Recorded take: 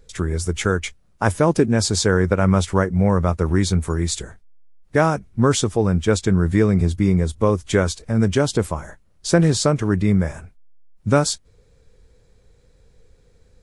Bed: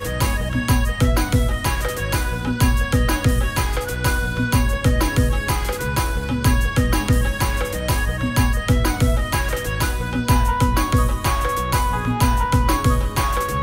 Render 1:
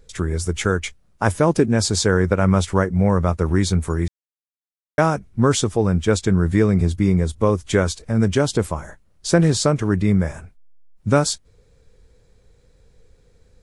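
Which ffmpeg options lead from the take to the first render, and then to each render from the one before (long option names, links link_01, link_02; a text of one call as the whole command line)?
ffmpeg -i in.wav -filter_complex "[0:a]asplit=3[link_01][link_02][link_03];[link_01]atrim=end=4.08,asetpts=PTS-STARTPTS,afade=type=out:start_time=4.076:duration=0.004:curve=hsin[link_04];[link_02]atrim=start=4.08:end=4.98,asetpts=PTS-STARTPTS,volume=0[link_05];[link_03]atrim=start=4.98,asetpts=PTS-STARTPTS,afade=type=in:duration=0.004:curve=hsin[link_06];[link_04][link_05][link_06]concat=n=3:v=0:a=1" out.wav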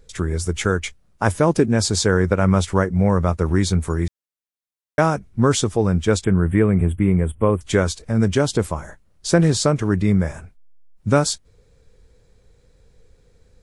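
ffmpeg -i in.wav -filter_complex "[0:a]asettb=1/sr,asplit=3[link_01][link_02][link_03];[link_01]atrim=end=6.244[link_04];[link_02]atrim=start=6.24:end=7.61,asetpts=PTS-STARTPTS,afade=type=in:duration=0.004:curve=qsin,afade=type=out:start_time=1.366:duration=0.004:curve=qsin,asuperstop=centerf=5200:order=12:qfactor=1.1[link_05];[link_03]atrim=start=7.606[link_06];[link_04][link_05]acrossfade=duration=0.004:curve1=hsin:curve2=qsin[link_07];[link_07][link_06]acrossfade=duration=0.004:curve1=qsin:curve2=hsin" out.wav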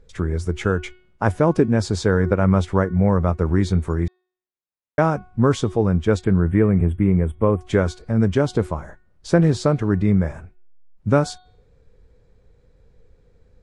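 ffmpeg -i in.wav -af "lowpass=frequency=1700:poles=1,bandreject=frequency=366.4:width_type=h:width=4,bandreject=frequency=732.8:width_type=h:width=4,bandreject=frequency=1099.2:width_type=h:width=4,bandreject=frequency=1465.6:width_type=h:width=4,bandreject=frequency=1832:width_type=h:width=4,bandreject=frequency=2198.4:width_type=h:width=4,bandreject=frequency=2564.8:width_type=h:width=4,bandreject=frequency=2931.2:width_type=h:width=4,bandreject=frequency=3297.6:width_type=h:width=4,bandreject=frequency=3664:width_type=h:width=4,bandreject=frequency=4030.4:width_type=h:width=4,bandreject=frequency=4396.8:width_type=h:width=4,bandreject=frequency=4763.2:width_type=h:width=4" out.wav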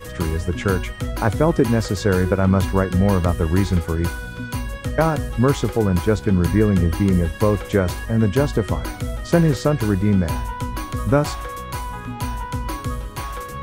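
ffmpeg -i in.wav -i bed.wav -filter_complex "[1:a]volume=-9dB[link_01];[0:a][link_01]amix=inputs=2:normalize=0" out.wav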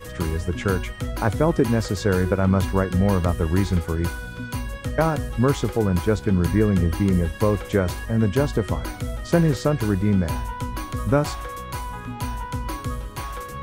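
ffmpeg -i in.wav -af "volume=-2.5dB" out.wav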